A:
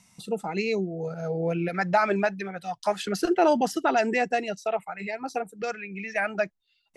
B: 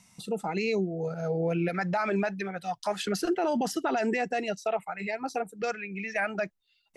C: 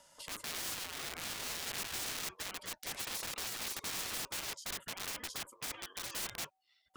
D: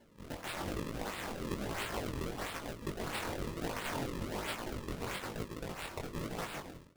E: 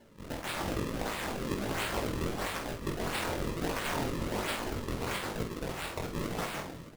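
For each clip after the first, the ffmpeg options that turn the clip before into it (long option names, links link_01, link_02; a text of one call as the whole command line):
ffmpeg -i in.wav -af "alimiter=limit=-19.5dB:level=0:latency=1:release=30" out.wav
ffmpeg -i in.wav -af "aeval=exprs='(mod(29.9*val(0)+1,2)-1)/29.9':channel_layout=same,afftfilt=real='re*lt(hypot(re,im),0.0355)':imag='im*lt(hypot(re,im),0.0355)':win_size=1024:overlap=0.75,aeval=exprs='val(0)*sin(2*PI*760*n/s)':channel_layout=same" out.wav
ffmpeg -i in.wav -af "aecho=1:1:150|262.5|346.9|410.2|457.6:0.631|0.398|0.251|0.158|0.1,acrusher=samples=34:mix=1:aa=0.000001:lfo=1:lforange=54.4:lforate=1.5,flanger=delay=17.5:depth=6:speed=1.1,volume=3dB" out.wav
ffmpeg -i in.wav -af "aecho=1:1:48|623:0.501|0.188,volume=4dB" out.wav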